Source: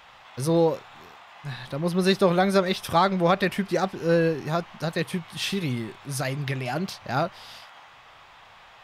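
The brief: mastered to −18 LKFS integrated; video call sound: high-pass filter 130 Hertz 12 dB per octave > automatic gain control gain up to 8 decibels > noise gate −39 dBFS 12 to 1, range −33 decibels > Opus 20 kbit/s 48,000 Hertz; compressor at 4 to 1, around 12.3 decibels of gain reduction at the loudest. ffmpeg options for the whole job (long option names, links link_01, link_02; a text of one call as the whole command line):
ffmpeg -i in.wav -af "acompressor=threshold=-31dB:ratio=4,highpass=130,dynaudnorm=maxgain=8dB,agate=range=-33dB:threshold=-39dB:ratio=12,volume=17.5dB" -ar 48000 -c:a libopus -b:a 20k out.opus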